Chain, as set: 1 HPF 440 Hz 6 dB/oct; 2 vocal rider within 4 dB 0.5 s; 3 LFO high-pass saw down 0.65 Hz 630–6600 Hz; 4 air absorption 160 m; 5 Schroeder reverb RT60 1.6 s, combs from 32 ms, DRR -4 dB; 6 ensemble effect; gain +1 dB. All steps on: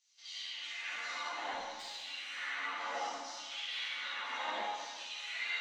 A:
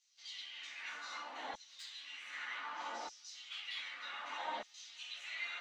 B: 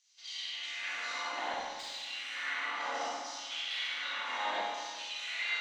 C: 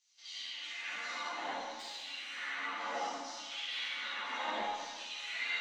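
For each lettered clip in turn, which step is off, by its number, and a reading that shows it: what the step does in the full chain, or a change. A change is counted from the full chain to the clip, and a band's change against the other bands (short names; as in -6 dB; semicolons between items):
5, loudness change -5.5 LU; 6, crest factor change -2.5 dB; 1, 250 Hz band +5.0 dB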